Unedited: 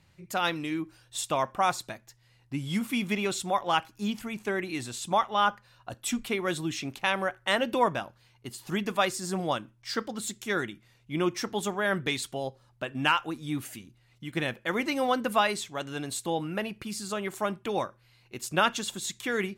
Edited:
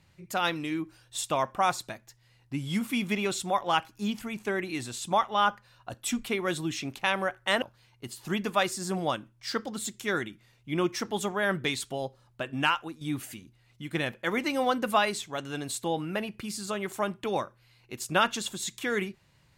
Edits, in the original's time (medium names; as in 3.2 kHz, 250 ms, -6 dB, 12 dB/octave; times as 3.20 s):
7.62–8.04 s: delete
12.89–13.43 s: fade out equal-power, to -9 dB